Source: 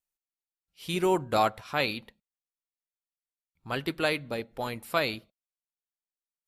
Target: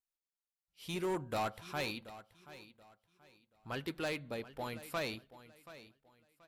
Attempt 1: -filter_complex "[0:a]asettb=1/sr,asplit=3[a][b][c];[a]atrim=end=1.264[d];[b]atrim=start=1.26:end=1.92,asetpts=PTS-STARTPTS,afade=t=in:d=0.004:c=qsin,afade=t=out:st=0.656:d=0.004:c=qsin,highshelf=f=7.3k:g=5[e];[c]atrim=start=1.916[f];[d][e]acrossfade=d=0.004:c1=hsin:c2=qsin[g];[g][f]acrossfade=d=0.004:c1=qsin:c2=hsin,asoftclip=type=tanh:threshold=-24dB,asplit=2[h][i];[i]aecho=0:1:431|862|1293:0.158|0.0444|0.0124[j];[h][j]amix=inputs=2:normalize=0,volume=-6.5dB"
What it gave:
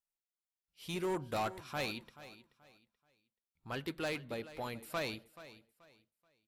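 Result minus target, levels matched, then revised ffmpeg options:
echo 0.299 s early
-filter_complex "[0:a]asettb=1/sr,asplit=3[a][b][c];[a]atrim=end=1.264[d];[b]atrim=start=1.26:end=1.92,asetpts=PTS-STARTPTS,afade=t=in:d=0.004:c=qsin,afade=t=out:st=0.656:d=0.004:c=qsin,highshelf=f=7.3k:g=5[e];[c]atrim=start=1.916[f];[d][e]acrossfade=d=0.004:c1=hsin:c2=qsin[g];[g][f]acrossfade=d=0.004:c1=qsin:c2=hsin,asoftclip=type=tanh:threshold=-24dB,asplit=2[h][i];[i]aecho=0:1:730|1460|2190:0.158|0.0444|0.0124[j];[h][j]amix=inputs=2:normalize=0,volume=-6.5dB"

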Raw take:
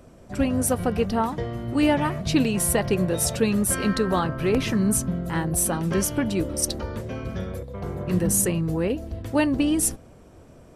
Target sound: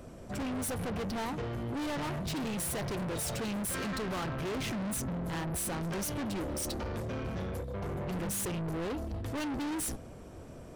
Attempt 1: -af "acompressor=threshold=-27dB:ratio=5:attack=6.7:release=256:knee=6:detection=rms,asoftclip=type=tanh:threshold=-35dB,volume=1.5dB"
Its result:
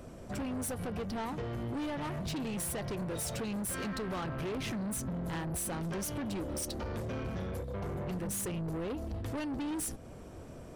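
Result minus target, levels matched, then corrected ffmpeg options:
compressor: peak gain reduction +12.5 dB
-af "asoftclip=type=tanh:threshold=-35dB,volume=1.5dB"

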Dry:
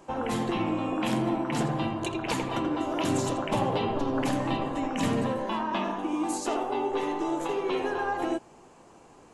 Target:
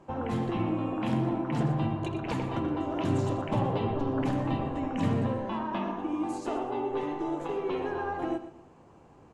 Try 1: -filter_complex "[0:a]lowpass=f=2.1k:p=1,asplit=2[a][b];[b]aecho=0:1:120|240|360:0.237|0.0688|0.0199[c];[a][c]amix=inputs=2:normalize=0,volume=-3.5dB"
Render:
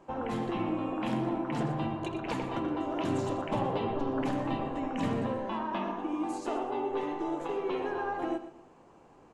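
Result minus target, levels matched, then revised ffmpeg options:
125 Hz band -5.0 dB
-filter_complex "[0:a]lowpass=f=2.1k:p=1,equalizer=f=92:t=o:w=1.9:g=9.5,asplit=2[a][b];[b]aecho=0:1:120|240|360:0.237|0.0688|0.0199[c];[a][c]amix=inputs=2:normalize=0,volume=-3.5dB"

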